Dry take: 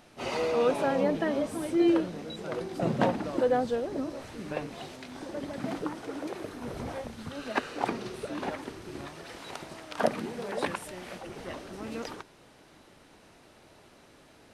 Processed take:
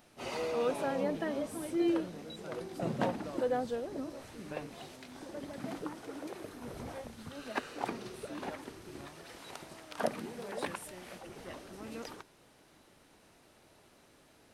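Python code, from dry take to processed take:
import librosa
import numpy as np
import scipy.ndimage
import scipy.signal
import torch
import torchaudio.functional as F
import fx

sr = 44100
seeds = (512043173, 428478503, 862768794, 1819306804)

y = fx.high_shelf(x, sr, hz=10000.0, db=10.5)
y = y * 10.0 ** (-6.5 / 20.0)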